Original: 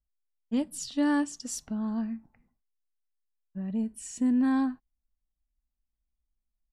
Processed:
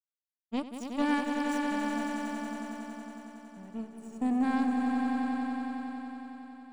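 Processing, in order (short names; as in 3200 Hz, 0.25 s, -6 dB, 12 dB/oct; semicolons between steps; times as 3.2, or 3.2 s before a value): power-law curve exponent 2; swelling echo 92 ms, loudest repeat 5, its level -7 dB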